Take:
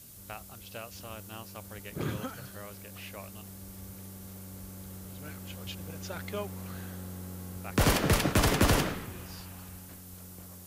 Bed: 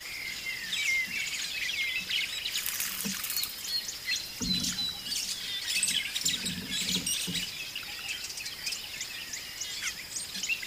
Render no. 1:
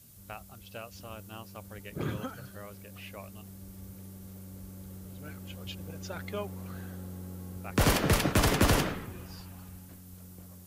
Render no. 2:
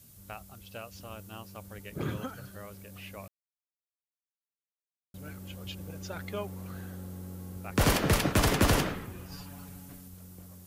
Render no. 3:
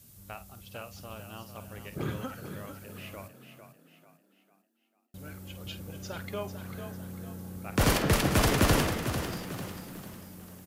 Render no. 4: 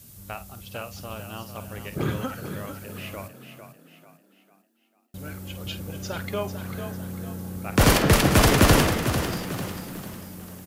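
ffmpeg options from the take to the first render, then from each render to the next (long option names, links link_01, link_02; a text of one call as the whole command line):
ffmpeg -i in.wav -af "afftdn=noise_reduction=6:noise_floor=-48" out.wav
ffmpeg -i in.wav -filter_complex "[0:a]asettb=1/sr,asplit=3[link_01][link_02][link_03];[link_01]atrim=end=9.314[link_04];[link_02]atrim=start=9.31:end=10.08,asetpts=PTS-STARTPTS,afade=type=in:duration=0.004:curve=qsin,afade=type=out:start_time=0.766:duration=0.004:curve=qsin,aecho=1:1:7:0.96,atrim=end_sample=33957[link_05];[link_03]atrim=start=10.076[link_06];[link_04][link_05]acrossfade=duration=0.004:curve1=hsin:curve2=qsin[link_07];[link_07][link_06]acrossfade=duration=0.004:curve1=qsin:curve2=hsin,asplit=3[link_08][link_09][link_10];[link_08]atrim=end=3.28,asetpts=PTS-STARTPTS,afade=type=out:start_time=3.276:duration=0.004:curve=hsin[link_11];[link_09]atrim=start=3.28:end=5.14,asetpts=PTS-STARTPTS,volume=0[link_12];[link_10]atrim=start=5.14,asetpts=PTS-STARTPTS,afade=type=in:duration=0.004:curve=hsin[link_13];[link_11][link_12][link_13]concat=n=3:v=0:a=1" out.wav
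ffmpeg -i in.wav -filter_complex "[0:a]asplit=2[link_01][link_02];[link_02]adelay=50,volume=-12dB[link_03];[link_01][link_03]amix=inputs=2:normalize=0,asplit=6[link_04][link_05][link_06][link_07][link_08][link_09];[link_05]adelay=447,afreqshift=33,volume=-9dB[link_10];[link_06]adelay=894,afreqshift=66,volume=-16.5dB[link_11];[link_07]adelay=1341,afreqshift=99,volume=-24.1dB[link_12];[link_08]adelay=1788,afreqshift=132,volume=-31.6dB[link_13];[link_09]adelay=2235,afreqshift=165,volume=-39.1dB[link_14];[link_04][link_10][link_11][link_12][link_13][link_14]amix=inputs=6:normalize=0" out.wav
ffmpeg -i in.wav -af "volume=7dB" out.wav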